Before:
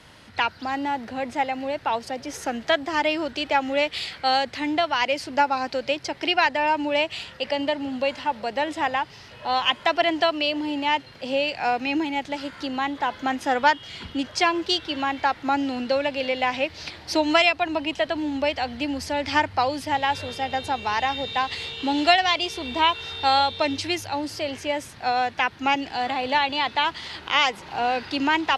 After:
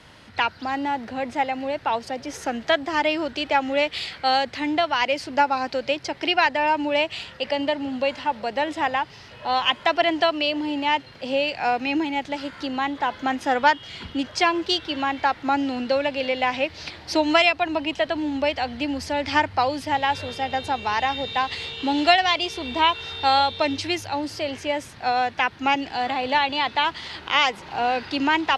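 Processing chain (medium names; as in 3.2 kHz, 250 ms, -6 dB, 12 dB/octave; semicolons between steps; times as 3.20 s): treble shelf 9.5 kHz -7.5 dB; trim +1 dB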